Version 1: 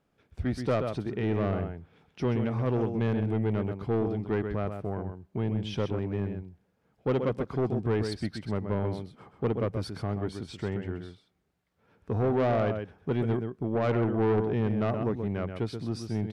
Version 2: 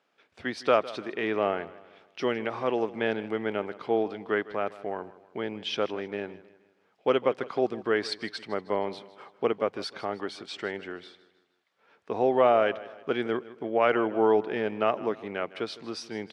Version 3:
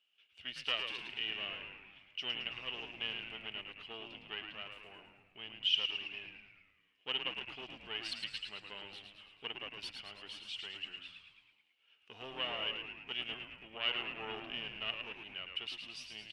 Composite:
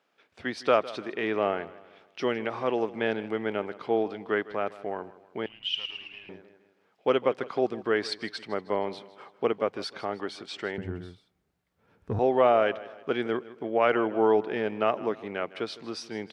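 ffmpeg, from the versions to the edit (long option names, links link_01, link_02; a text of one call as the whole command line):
ffmpeg -i take0.wav -i take1.wav -i take2.wav -filter_complex "[1:a]asplit=3[link_01][link_02][link_03];[link_01]atrim=end=5.462[link_04];[2:a]atrim=start=5.458:end=6.292[link_05];[link_02]atrim=start=6.288:end=10.782[link_06];[0:a]atrim=start=10.778:end=12.192[link_07];[link_03]atrim=start=12.188[link_08];[link_04][link_05]acrossfade=duration=0.004:curve1=hsin:curve2=hsin[link_09];[link_09][link_06]acrossfade=duration=0.004:curve1=hsin:curve2=hsin[link_10];[link_10][link_07]acrossfade=duration=0.004:curve1=hsin:curve2=hsin[link_11];[link_11][link_08]acrossfade=duration=0.004:curve1=hsin:curve2=hsin" out.wav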